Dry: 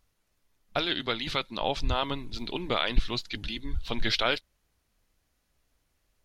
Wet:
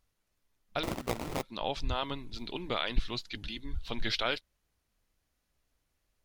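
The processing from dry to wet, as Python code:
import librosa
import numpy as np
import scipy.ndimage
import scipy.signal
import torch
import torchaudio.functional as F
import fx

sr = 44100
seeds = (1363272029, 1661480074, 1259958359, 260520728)

y = fx.sample_hold(x, sr, seeds[0], rate_hz=1600.0, jitter_pct=20, at=(0.83, 1.43))
y = y * 10.0 ** (-5.0 / 20.0)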